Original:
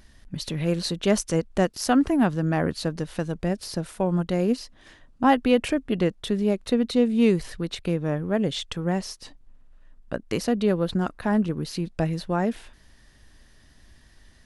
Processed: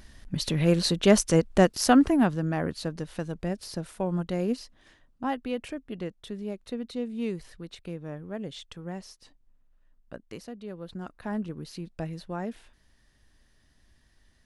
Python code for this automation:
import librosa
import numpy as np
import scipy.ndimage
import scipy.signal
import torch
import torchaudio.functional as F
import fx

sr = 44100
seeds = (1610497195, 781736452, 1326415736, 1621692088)

y = fx.gain(x, sr, db=fx.line((1.85, 2.5), (2.54, -5.0), (4.61, -5.0), (5.38, -12.0), (10.19, -12.0), (10.59, -19.0), (11.27, -9.5)))